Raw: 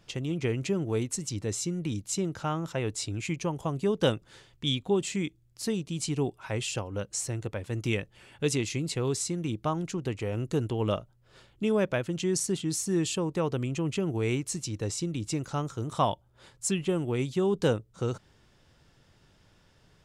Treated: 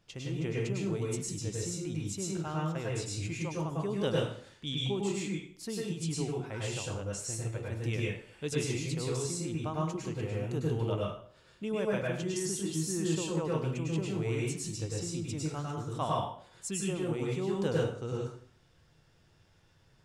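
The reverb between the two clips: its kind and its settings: plate-style reverb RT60 0.52 s, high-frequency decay 0.85×, pre-delay 90 ms, DRR -4 dB; gain -9 dB

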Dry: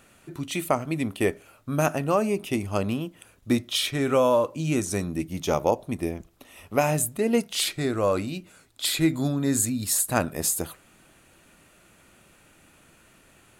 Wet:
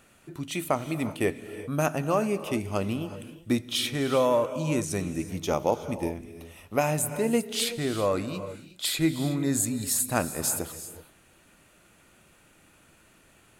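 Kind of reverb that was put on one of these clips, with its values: non-linear reverb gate 0.4 s rising, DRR 11.5 dB; gain -2.5 dB

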